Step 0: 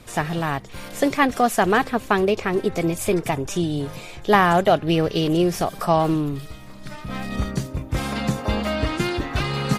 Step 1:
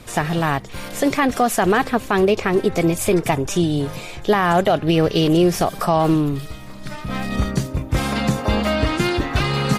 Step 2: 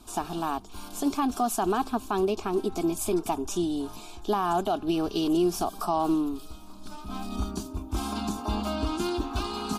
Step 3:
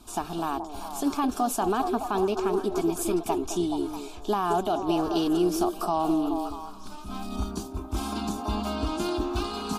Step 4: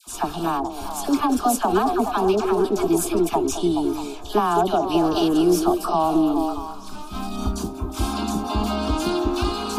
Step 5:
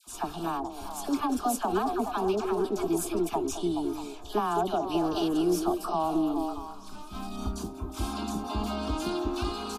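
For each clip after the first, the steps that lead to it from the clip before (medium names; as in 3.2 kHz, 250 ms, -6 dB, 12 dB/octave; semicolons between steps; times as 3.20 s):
peak limiter -12 dBFS, peak gain reduction 10 dB; trim +4.5 dB
static phaser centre 520 Hz, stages 6; trim -6.5 dB
repeats whose band climbs or falls 213 ms, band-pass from 450 Hz, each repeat 0.7 oct, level -3.5 dB
phase dispersion lows, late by 70 ms, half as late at 1.1 kHz; trim +6 dB
resampled via 32 kHz; trim -8 dB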